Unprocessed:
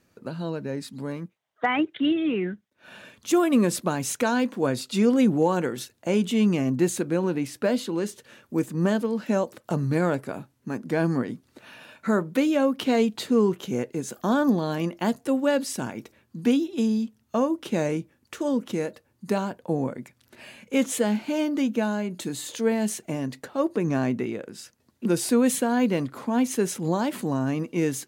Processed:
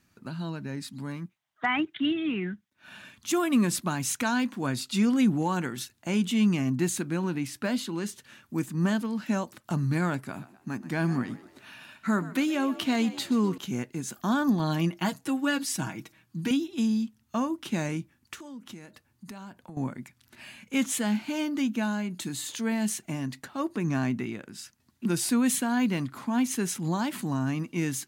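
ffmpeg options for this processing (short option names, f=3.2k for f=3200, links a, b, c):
-filter_complex "[0:a]asettb=1/sr,asplit=3[a][b][c];[a]atrim=end=10.194[d];[b]atrim=start=10.19:end=13.58,asetpts=PTS-STARTPTS,afade=t=in:d=0.004:c=qsin,afade=t=out:st=3.386:d=0.004:c=qsin,asplit=5[e][f][g][h][i];[f]adelay=126,afreqshift=59,volume=-16dB[j];[g]adelay=252,afreqshift=118,volume=-23.1dB[k];[h]adelay=378,afreqshift=177,volume=-30.3dB[l];[i]adelay=504,afreqshift=236,volume=-37.4dB[m];[e][j][k][l][m]amix=inputs=5:normalize=0,atrim=end_sample=149499[n];[c]atrim=start=13.576[o];[d][n]acrossfade=d=0.004:c1=hsin:c2=qsin[p];[p][o]acrossfade=d=0.004:c1=qsin:c2=hsin,asettb=1/sr,asplit=3[q][r][s];[q]atrim=end=14.594[t];[r]atrim=start=14.59:end=16.51,asetpts=PTS-STARTPTS,afade=t=in:d=0.004:c=qsin,afade=t=out:st=1.916:d=0.004:c=qsin,aecho=1:1:6.3:0.68,atrim=end_sample=84672[u];[s]atrim=start=16.506[v];[t][u]acrossfade=d=0.004:c1=hsin:c2=qsin[w];[w][v]acrossfade=d=0.004:c1=qsin:c2=hsin,asettb=1/sr,asplit=3[x][y][z];[x]atrim=end=18.344[aa];[y]atrim=start=18.34:end=19.77,asetpts=PTS-STARTPTS,afade=t=in:d=0.004:c=qsin,afade=t=out:st=1.426:d=0.004:c=qsin,acompressor=threshold=-40dB:ratio=3:attack=3.2:release=140:knee=1:detection=peak[ab];[z]atrim=start=19.766[ac];[aa][ab]acrossfade=d=0.004:c1=hsin:c2=qsin[ad];[ad][ac]acrossfade=d=0.004:c1=qsin:c2=hsin,equalizer=f=490:t=o:w=0.83:g=-14.5"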